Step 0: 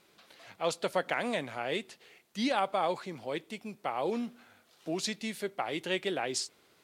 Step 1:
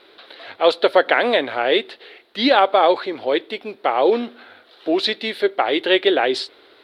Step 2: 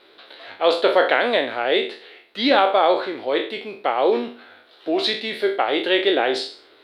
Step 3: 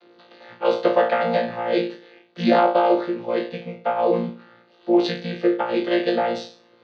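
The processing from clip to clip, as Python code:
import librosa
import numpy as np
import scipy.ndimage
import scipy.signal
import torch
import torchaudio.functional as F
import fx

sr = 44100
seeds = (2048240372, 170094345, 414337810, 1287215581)

y1 = fx.curve_eq(x, sr, hz=(100.0, 170.0, 270.0, 410.0, 1100.0, 1600.0, 2500.0, 3900.0, 6500.0, 10000.0), db=(0, -11, 8, 13, 8, 12, 7, 14, -15, -8))
y1 = y1 * 10.0 ** (5.0 / 20.0)
y2 = fx.spec_trails(y1, sr, decay_s=0.43)
y2 = y2 * 10.0 ** (-3.5 / 20.0)
y3 = fx.chord_vocoder(y2, sr, chord='bare fifth', root=46)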